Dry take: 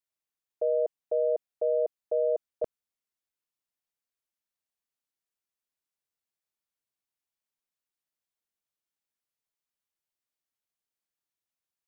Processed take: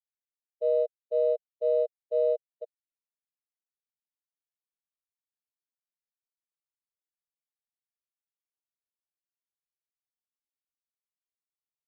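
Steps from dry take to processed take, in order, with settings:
bit reduction 5 bits
every bin expanded away from the loudest bin 2.5 to 1

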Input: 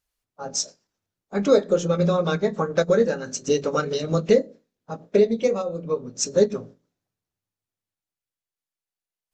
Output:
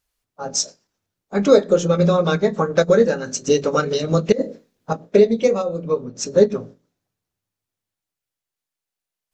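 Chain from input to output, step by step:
0:04.32–0:04.93: compressor whose output falls as the input rises −27 dBFS, ratio −1
0:06.04–0:06.59: high-shelf EQ 4,200 Hz → 6,900 Hz −11 dB
level +4.5 dB

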